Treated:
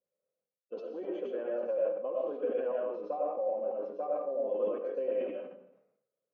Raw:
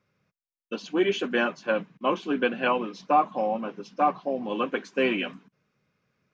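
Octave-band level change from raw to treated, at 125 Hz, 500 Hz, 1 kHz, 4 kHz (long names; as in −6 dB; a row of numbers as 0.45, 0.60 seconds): below −20 dB, −3.0 dB, −15.5 dB, below −25 dB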